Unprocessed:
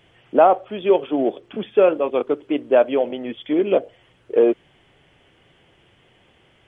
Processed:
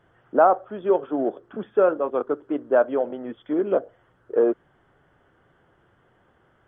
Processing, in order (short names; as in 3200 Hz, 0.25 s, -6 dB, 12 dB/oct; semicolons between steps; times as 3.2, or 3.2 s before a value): resonant high shelf 1900 Hz -8.5 dB, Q 3; gain -4.5 dB